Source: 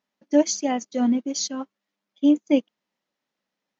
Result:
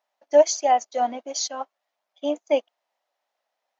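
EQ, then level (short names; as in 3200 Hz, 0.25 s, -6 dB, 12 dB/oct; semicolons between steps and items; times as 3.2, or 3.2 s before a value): resonant high-pass 690 Hz, resonance Q 4; 0.0 dB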